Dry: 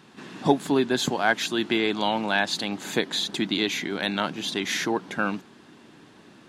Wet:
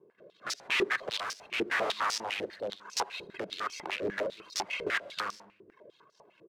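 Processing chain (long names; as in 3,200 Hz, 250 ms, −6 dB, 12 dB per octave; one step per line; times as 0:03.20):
running median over 25 samples
reverb reduction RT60 0.9 s
comb filter 1.9 ms, depth 74%
automatic gain control gain up to 9 dB
wrap-around overflow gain 17 dB
rotating-speaker cabinet horn 0.9 Hz, later 5 Hz, at 0:03.43
single-tap delay 141 ms −19.5 dB
convolution reverb RT60 0.75 s, pre-delay 68 ms, DRR 18 dB
band-pass on a step sequencer 10 Hz 400–5,400 Hz
level +4 dB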